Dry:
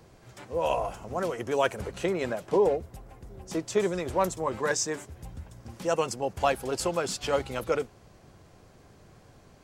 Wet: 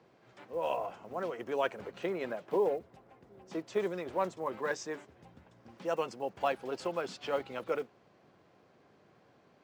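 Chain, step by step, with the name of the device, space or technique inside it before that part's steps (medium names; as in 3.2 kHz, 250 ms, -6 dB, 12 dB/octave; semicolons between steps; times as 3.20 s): early digital voice recorder (band-pass 200–3600 Hz; block-companded coder 7-bit); trim -6 dB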